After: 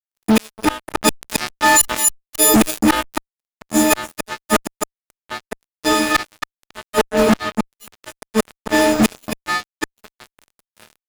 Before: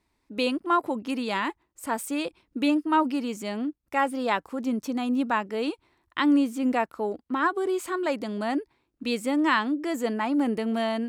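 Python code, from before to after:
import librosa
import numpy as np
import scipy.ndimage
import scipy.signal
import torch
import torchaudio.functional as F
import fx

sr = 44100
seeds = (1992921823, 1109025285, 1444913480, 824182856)

y = fx.freq_snap(x, sr, grid_st=6)
y = fx.low_shelf(y, sr, hz=170.0, db=-9.5)
y = fx.rev_double_slope(y, sr, seeds[0], early_s=0.29, late_s=1.6, knee_db=-16, drr_db=4.5)
y = fx.rider(y, sr, range_db=3, speed_s=2.0)
y = fx.gate_flip(y, sr, shuts_db=-21.0, range_db=-38)
y = fx.peak_eq(y, sr, hz=2900.0, db=-9.0, octaves=1.2)
y = fx.echo_feedback(y, sr, ms=272, feedback_pct=19, wet_db=-18.5)
y = fx.fuzz(y, sr, gain_db=49.0, gate_db=-56.0)
y = fx.env_flatten(y, sr, amount_pct=50, at=(0.92, 3.18))
y = y * librosa.db_to_amplitude(3.5)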